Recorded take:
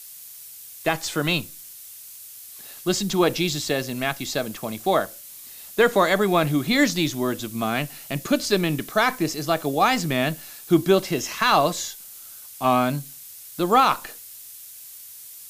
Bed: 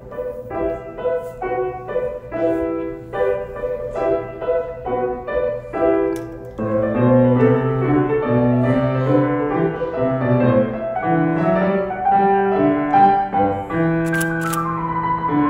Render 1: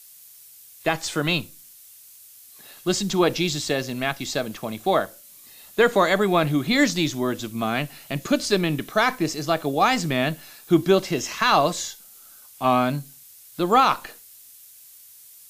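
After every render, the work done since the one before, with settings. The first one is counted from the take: noise print and reduce 6 dB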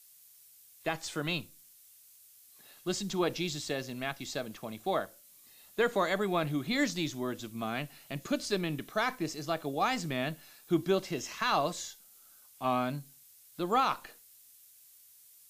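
trim -10.5 dB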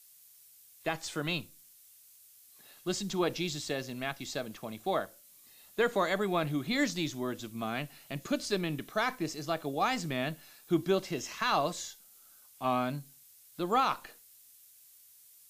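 no audible change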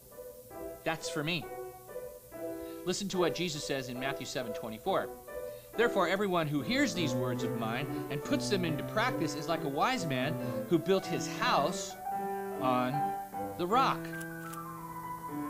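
add bed -21 dB

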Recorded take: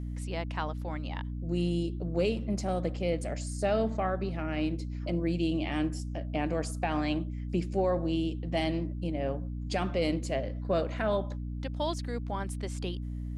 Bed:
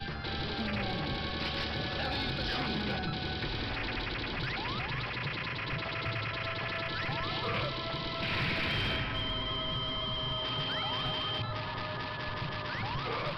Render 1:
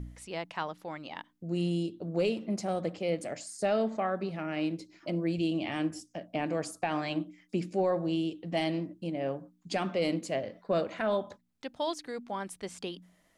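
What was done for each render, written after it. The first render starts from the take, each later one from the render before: de-hum 60 Hz, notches 5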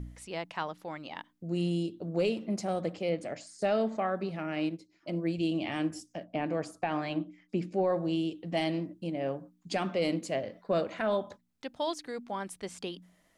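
3.09–3.62 s: distance through air 74 m; 4.69–5.43 s: upward expansion, over -48 dBFS; 6.24–7.90 s: low-pass 2.9 kHz 6 dB/octave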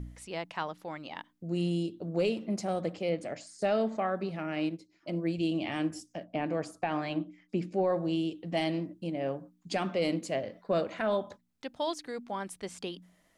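no audible change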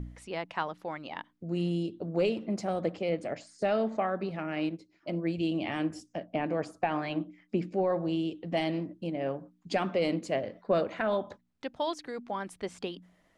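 low-pass 2.9 kHz 6 dB/octave; harmonic-percussive split percussive +4 dB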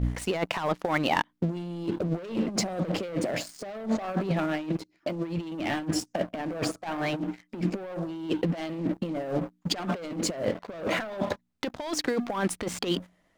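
waveshaping leveller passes 3; compressor with a negative ratio -28 dBFS, ratio -0.5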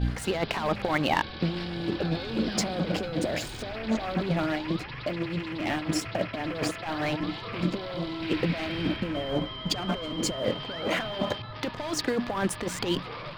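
add bed -4 dB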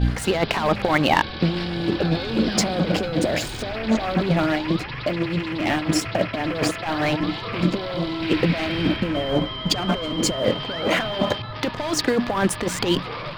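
trim +7 dB

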